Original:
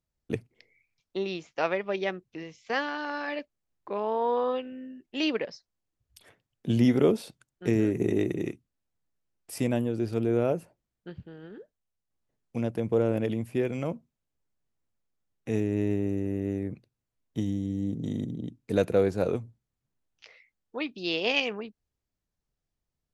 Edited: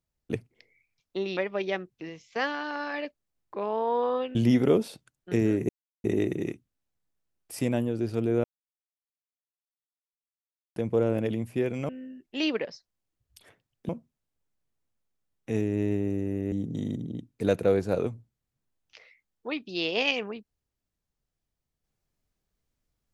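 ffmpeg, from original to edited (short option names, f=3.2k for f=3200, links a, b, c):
-filter_complex "[0:a]asplit=9[a][b][c][d][e][f][g][h][i];[a]atrim=end=1.372[j];[b]atrim=start=1.708:end=4.692[k];[c]atrim=start=6.688:end=8.03,asetpts=PTS-STARTPTS,afade=t=out:st=1.338:d=0.004:c=hsin,apad=pad_dur=0.35[l];[d]atrim=start=8.03:end=10.43,asetpts=PTS-STARTPTS,afade=t=in:d=0.004:c=hsin,afade=t=out:st=2.396:d=0.004:c=hsin[m];[e]atrim=start=10.43:end=12.75,asetpts=PTS-STARTPTS,volume=0[n];[f]atrim=start=12.75:end=13.882,asetpts=PTS-STARTPTS,afade=t=in:d=0.004:c=hsin[o];[g]atrim=start=4.688:end=6.692[p];[h]atrim=start=13.878:end=16.512[q];[i]atrim=start=17.808[r];[j][k]acrossfade=d=0.004:c1=hsin:c2=hsin[s];[l][m][n][o]concat=n=4:v=0:a=1[t];[s][t]acrossfade=d=0.004:c1=hsin:c2=hsin[u];[u][p]acrossfade=d=0.004:c1=hsin:c2=hsin[v];[v][q]acrossfade=d=0.004:c1=hsin:c2=hsin[w];[w][r]acrossfade=d=0.004:c1=hsin:c2=hsin"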